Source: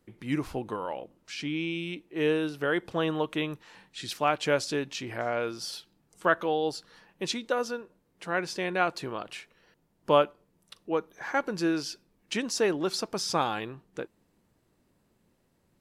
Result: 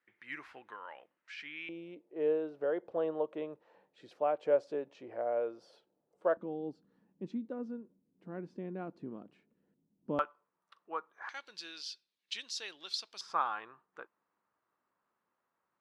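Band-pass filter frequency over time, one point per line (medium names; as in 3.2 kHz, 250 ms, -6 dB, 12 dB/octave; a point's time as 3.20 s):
band-pass filter, Q 2.8
1.8 kHz
from 1.69 s 550 Hz
from 6.37 s 230 Hz
from 10.19 s 1.2 kHz
from 11.29 s 3.8 kHz
from 13.21 s 1.2 kHz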